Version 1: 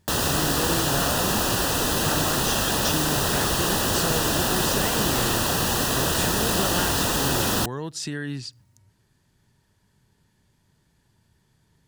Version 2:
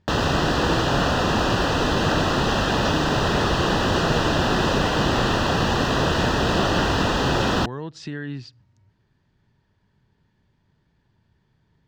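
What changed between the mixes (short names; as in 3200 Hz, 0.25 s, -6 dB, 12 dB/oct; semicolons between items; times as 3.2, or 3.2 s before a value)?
background +5.0 dB; master: add air absorption 190 m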